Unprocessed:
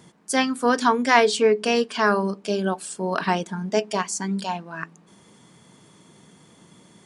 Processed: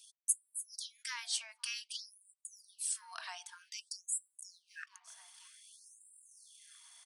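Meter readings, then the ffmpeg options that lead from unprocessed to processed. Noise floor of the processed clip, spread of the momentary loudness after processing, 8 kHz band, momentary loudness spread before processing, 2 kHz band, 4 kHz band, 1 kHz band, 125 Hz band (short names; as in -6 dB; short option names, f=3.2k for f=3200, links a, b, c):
-81 dBFS, 21 LU, -4.0 dB, 11 LU, -22.0 dB, -12.5 dB, -31.5 dB, under -40 dB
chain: -filter_complex "[0:a]alimiter=limit=-10.5dB:level=0:latency=1:release=197,bandreject=f=7.2k:w=6.3,bandreject=f=80.33:t=h:w=4,bandreject=f=160.66:t=h:w=4,bandreject=f=240.99:t=h:w=4,bandreject=f=321.32:t=h:w=4,bandreject=f=401.65:t=h:w=4,bandreject=f=481.98:t=h:w=4,bandreject=f=562.31:t=h:w=4,bandreject=f=642.64:t=h:w=4,bandreject=f=722.97:t=h:w=4,bandreject=f=803.3:t=h:w=4,bandreject=f=883.63:t=h:w=4,asplit=2[a][b];[b]adelay=959,lowpass=f=4.2k:p=1,volume=-23.5dB,asplit=2[c][d];[d]adelay=959,lowpass=f=4.2k:p=1,volume=0.49,asplit=2[e][f];[f]adelay=959,lowpass=f=4.2k:p=1,volume=0.49[g];[c][e][g]amix=inputs=3:normalize=0[h];[a][h]amix=inputs=2:normalize=0,acompressor=threshold=-37dB:ratio=2,lowshelf=f=370:g=6,anlmdn=0.000251,aderivative,afftfilt=real='re*gte(b*sr/1024,590*pow(7400/590,0.5+0.5*sin(2*PI*0.53*pts/sr)))':imag='im*gte(b*sr/1024,590*pow(7400/590,0.5+0.5*sin(2*PI*0.53*pts/sr)))':win_size=1024:overlap=0.75,volume=4.5dB"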